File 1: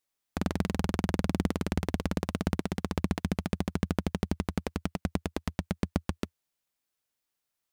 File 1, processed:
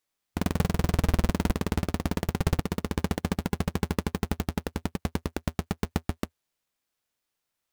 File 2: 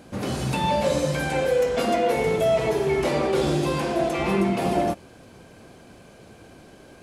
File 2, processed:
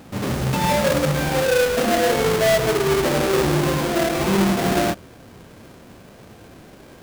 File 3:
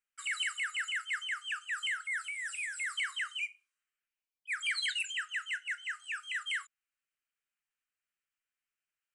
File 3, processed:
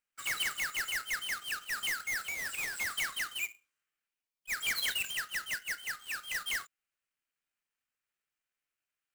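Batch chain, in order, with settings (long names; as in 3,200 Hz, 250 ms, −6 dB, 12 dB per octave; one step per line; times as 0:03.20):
each half-wave held at its own peak
harmonic and percussive parts rebalanced percussive −3 dB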